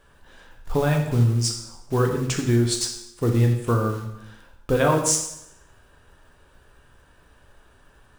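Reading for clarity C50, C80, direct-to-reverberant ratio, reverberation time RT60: 6.0 dB, 8.5 dB, 2.0 dB, 0.75 s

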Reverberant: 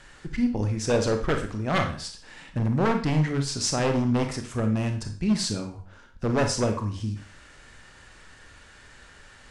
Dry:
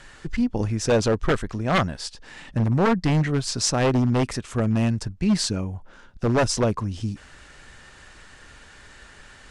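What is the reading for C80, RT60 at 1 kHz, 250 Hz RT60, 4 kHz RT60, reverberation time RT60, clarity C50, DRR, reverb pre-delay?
13.5 dB, 0.45 s, 0.45 s, 0.40 s, 0.45 s, 8.5 dB, 5.0 dB, 20 ms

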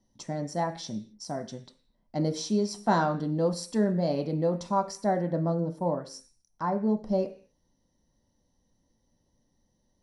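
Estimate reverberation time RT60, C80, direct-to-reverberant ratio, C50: 0.45 s, 18.0 dB, 5.0 dB, 13.5 dB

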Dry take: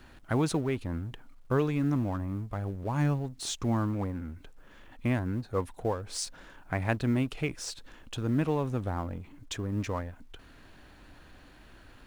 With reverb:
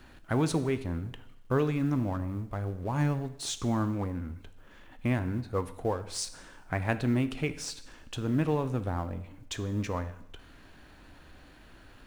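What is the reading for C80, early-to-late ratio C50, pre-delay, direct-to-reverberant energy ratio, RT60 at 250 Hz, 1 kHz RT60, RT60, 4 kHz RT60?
17.0 dB, 14.0 dB, 12 ms, 11.0 dB, 0.85 s, 0.85 s, 0.85 s, 0.80 s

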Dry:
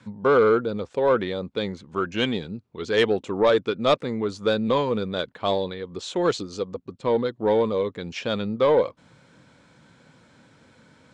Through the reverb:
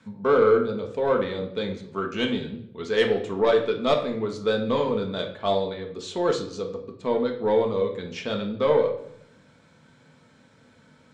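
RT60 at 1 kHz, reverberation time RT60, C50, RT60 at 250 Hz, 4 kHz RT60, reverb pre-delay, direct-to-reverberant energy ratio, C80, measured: 0.65 s, 0.70 s, 8.5 dB, 0.90 s, 0.55 s, 5 ms, 2.0 dB, 12.0 dB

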